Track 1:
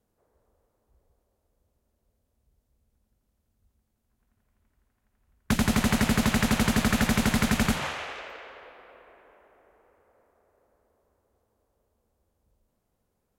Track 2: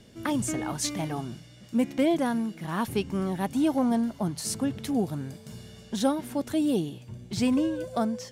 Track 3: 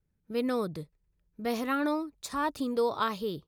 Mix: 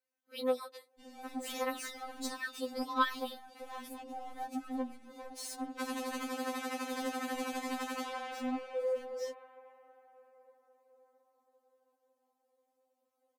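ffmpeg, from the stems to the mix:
ffmpeg -i stem1.wav -i stem2.wav -i stem3.wav -filter_complex "[0:a]highpass=270,adelay=300,volume=-4.5dB[link_01];[1:a]alimiter=limit=-21.5dB:level=0:latency=1:release=274,asoftclip=type=tanh:threshold=-39.5dB,adelay=1000,volume=1dB[link_02];[2:a]highpass=frequency=420:width=0.5412,highpass=frequency=420:width=1.3066,volume=1dB[link_03];[link_01][link_02]amix=inputs=2:normalize=0,equalizer=frequency=630:width_type=o:width=1.1:gain=12,acompressor=threshold=-39dB:ratio=2,volume=0dB[link_04];[link_03][link_04]amix=inputs=2:normalize=0,afftfilt=real='re*3.46*eq(mod(b,12),0)':imag='im*3.46*eq(mod(b,12),0)':win_size=2048:overlap=0.75" out.wav

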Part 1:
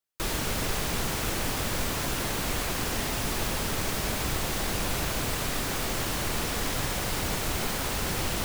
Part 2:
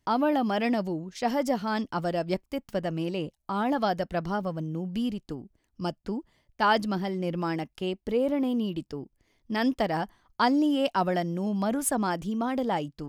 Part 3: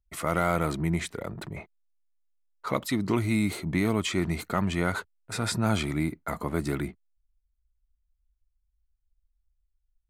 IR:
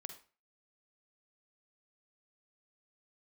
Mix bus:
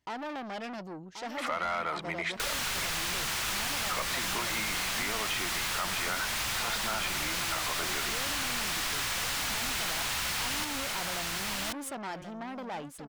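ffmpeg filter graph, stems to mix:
-filter_complex "[0:a]equalizer=frequency=410:width_type=o:width=2:gain=-12.5,adelay=2200,volume=-4.5dB,asplit=2[link_01][link_02];[link_02]volume=-5dB[link_03];[1:a]equalizer=frequency=65:width=0.38:gain=10.5,aeval=exprs='(tanh(31.6*val(0)+0.25)-tanh(0.25))/31.6':channel_layout=same,volume=-13.5dB,asplit=2[link_04][link_05];[link_05]volume=-10dB[link_06];[2:a]acrossover=split=510 4900:gain=0.224 1 0.158[link_07][link_08][link_09];[link_07][link_08][link_09]amix=inputs=3:normalize=0,adelay=1250,volume=-5dB[link_10];[link_03][link_06]amix=inputs=2:normalize=0,aecho=0:1:1081:1[link_11];[link_01][link_04][link_10][link_11]amix=inputs=4:normalize=0,asplit=2[link_12][link_13];[link_13]highpass=frequency=720:poles=1,volume=18dB,asoftclip=type=tanh:threshold=-16dB[link_14];[link_12][link_14]amix=inputs=2:normalize=0,lowpass=frequency=5700:poles=1,volume=-6dB,acompressor=threshold=-29dB:ratio=6"

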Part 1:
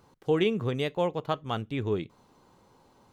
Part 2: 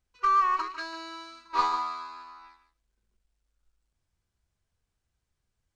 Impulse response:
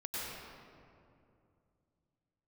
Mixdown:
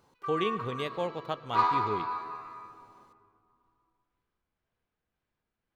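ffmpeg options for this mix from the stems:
-filter_complex "[0:a]lowshelf=frequency=270:gain=-8,volume=-4dB,asplit=2[link_01][link_02];[link_02]volume=-20dB[link_03];[1:a]acrossover=split=170 3900:gain=0.141 1 0.2[link_04][link_05][link_06];[link_04][link_05][link_06]amix=inputs=3:normalize=0,tremolo=f=1.9:d=0.41,adynamicsmooth=sensitivity=2.5:basefreq=6000,volume=-0.5dB,afade=type=in:start_time=1.08:duration=0.64:silence=0.281838,asplit=2[link_07][link_08];[link_08]volume=-3.5dB[link_09];[2:a]atrim=start_sample=2205[link_10];[link_03][link_09]amix=inputs=2:normalize=0[link_11];[link_11][link_10]afir=irnorm=-1:irlink=0[link_12];[link_01][link_07][link_12]amix=inputs=3:normalize=0,lowshelf=frequency=150:gain=3.5"

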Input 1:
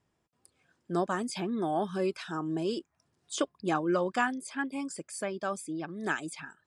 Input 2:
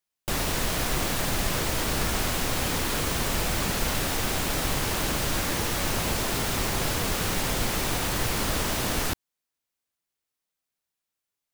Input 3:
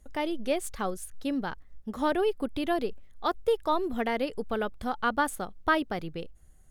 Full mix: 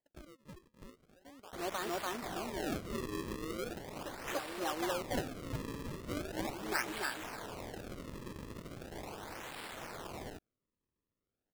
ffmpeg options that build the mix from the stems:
ffmpeg -i stem1.wav -i stem2.wav -i stem3.wav -filter_complex "[0:a]asoftclip=type=tanh:threshold=-21.5dB,adelay=650,volume=-1dB,asplit=2[link_01][link_02];[link_02]volume=-4dB[link_03];[1:a]alimiter=limit=-19.5dB:level=0:latency=1,adelay=1250,volume=0dB[link_04];[2:a]bass=frequency=250:gain=-2,treble=frequency=4000:gain=-9,acompressor=threshold=-28dB:ratio=3,volume=-14dB,asplit=3[link_05][link_06][link_07];[link_06]volume=-16dB[link_08];[link_07]apad=whole_len=322595[link_09];[link_01][link_09]sidechaincompress=threshold=-57dB:ratio=8:attack=23:release=264[link_10];[link_04][link_05]amix=inputs=2:normalize=0,aeval=exprs='(tanh(22.4*val(0)+0.75)-tanh(0.75))/22.4':channel_layout=same,alimiter=level_in=10dB:limit=-24dB:level=0:latency=1:release=24,volume=-10dB,volume=0dB[link_11];[link_03][link_08]amix=inputs=2:normalize=0,aecho=0:1:289:1[link_12];[link_10][link_11][link_12]amix=inputs=3:normalize=0,highpass=390,acrusher=samples=34:mix=1:aa=0.000001:lfo=1:lforange=54.4:lforate=0.39" out.wav

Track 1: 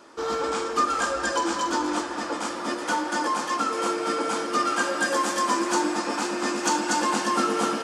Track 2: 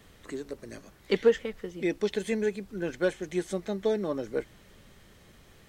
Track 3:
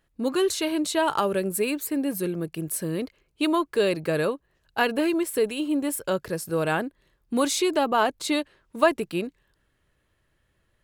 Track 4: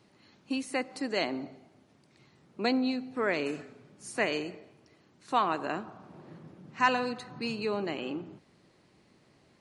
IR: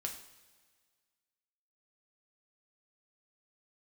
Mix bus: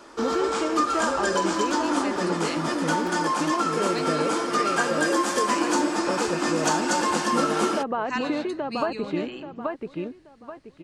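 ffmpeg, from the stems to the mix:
-filter_complex "[0:a]volume=3dB[link_01];[1:a]acompressor=threshold=-34dB:ratio=12,aeval=exprs='(mod(21.1*val(0)+1,2)-1)/21.1':channel_layout=same,adelay=1950,volume=-9dB[link_02];[2:a]lowpass=1800,acompressor=threshold=-23dB:ratio=6,volume=2dB,asplit=2[link_03][link_04];[link_04]volume=-4dB[link_05];[3:a]equalizer=frequency=530:width=0.37:gain=-8.5,adelay=1300,volume=2dB[link_06];[link_05]aecho=0:1:831|1662|2493|3324:1|0.27|0.0729|0.0197[link_07];[link_01][link_02][link_03][link_06][link_07]amix=inputs=5:normalize=0,acompressor=threshold=-25dB:ratio=1.5"

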